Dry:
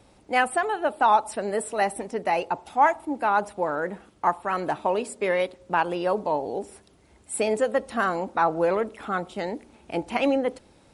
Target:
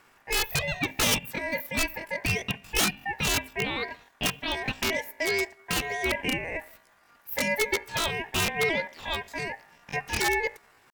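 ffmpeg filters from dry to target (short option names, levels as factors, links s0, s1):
-af "aeval=exprs='(mod(5.31*val(0)+1,2)-1)/5.31':c=same,asetrate=74167,aresample=44100,atempo=0.594604,aeval=exprs='val(0)*sin(2*PI*1300*n/s)':c=same"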